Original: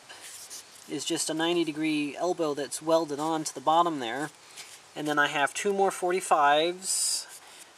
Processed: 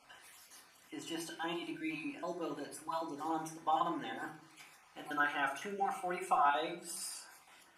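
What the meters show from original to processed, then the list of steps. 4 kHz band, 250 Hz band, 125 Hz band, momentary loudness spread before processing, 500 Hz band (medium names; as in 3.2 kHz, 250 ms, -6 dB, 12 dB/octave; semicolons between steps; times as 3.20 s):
-14.5 dB, -12.0 dB, -11.5 dB, 18 LU, -14.5 dB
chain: random holes in the spectrogram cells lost 26%; graphic EQ 125/250/500/4000/8000 Hz -7/-3/-8/-7/-9 dB; simulated room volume 540 m³, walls furnished, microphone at 2 m; trim -8 dB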